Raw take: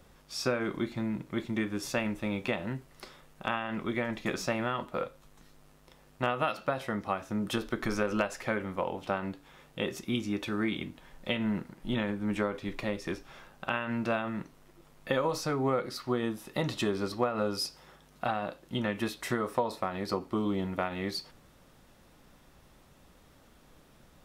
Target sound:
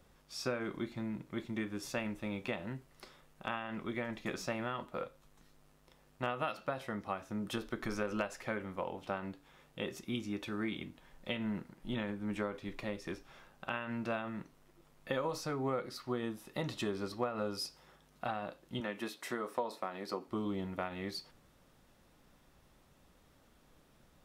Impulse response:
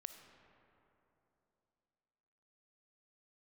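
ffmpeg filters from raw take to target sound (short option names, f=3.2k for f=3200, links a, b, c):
-filter_complex "[0:a]asettb=1/sr,asplit=3[a][b][c];[a]atrim=end=18.804[d];[b]atrim=start=18.8:end=20.28,asetpts=PTS-STARTPTS,afade=t=in:d=0.004:c=qsin,afade=t=out:st=1.476:d=0.004:c=qsin,highpass=230[e];[c]atrim=start=20.276[f];[d][e]acrossfade=d=0.004:c1=hsin:c2=qsin[g];[g][f]acrossfade=d=0.004:c1=qsin:c2=hsin,volume=-6.5dB"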